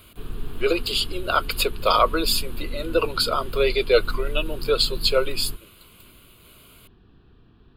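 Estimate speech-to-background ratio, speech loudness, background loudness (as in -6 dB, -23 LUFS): 14.5 dB, -22.5 LUFS, -37.0 LUFS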